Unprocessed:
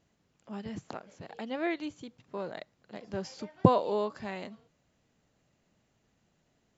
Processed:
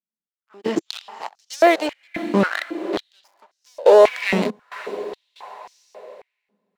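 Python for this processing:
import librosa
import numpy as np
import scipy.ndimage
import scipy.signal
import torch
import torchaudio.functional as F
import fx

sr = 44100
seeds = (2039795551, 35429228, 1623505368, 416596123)

p1 = fx.leveller(x, sr, passes=5)
p2 = p1 + fx.echo_diffused(p1, sr, ms=488, feedback_pct=52, wet_db=-13, dry=0)
p3 = fx.step_gate(p2, sr, bpm=70, pattern='...xxx.xx.xxxx.', floor_db=-24.0, edge_ms=4.5)
p4 = fx.filter_held_highpass(p3, sr, hz=3.7, low_hz=210.0, high_hz=5700.0)
y = p4 * librosa.db_to_amplitude(-2.0)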